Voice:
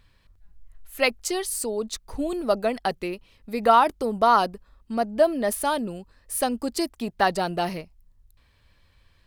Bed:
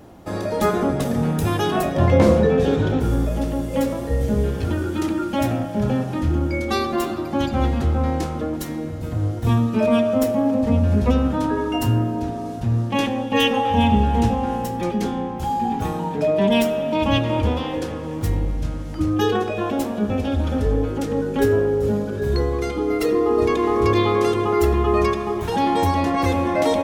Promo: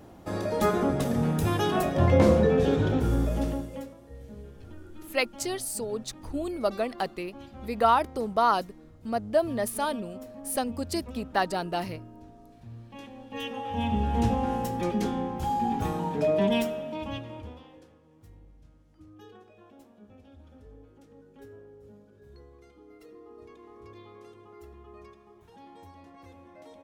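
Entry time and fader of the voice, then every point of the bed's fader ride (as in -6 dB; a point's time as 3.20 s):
4.15 s, -4.5 dB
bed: 3.50 s -5 dB
3.95 s -24 dB
12.98 s -24 dB
14.33 s -5 dB
16.37 s -5 dB
18.03 s -31 dB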